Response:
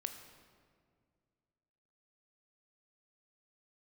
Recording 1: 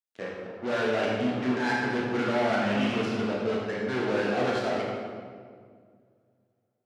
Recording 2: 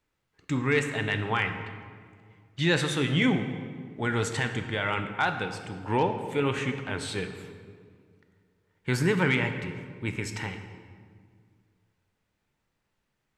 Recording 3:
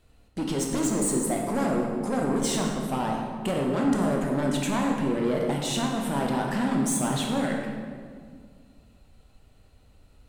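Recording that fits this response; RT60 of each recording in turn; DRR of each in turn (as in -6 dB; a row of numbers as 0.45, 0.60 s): 2; 2.0, 2.0, 2.0 s; -5.0, 6.5, -0.5 dB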